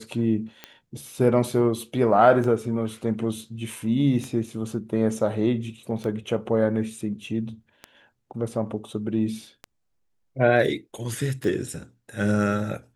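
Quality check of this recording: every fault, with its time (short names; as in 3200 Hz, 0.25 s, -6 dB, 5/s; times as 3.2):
tick 33 1/3 rpm -19 dBFS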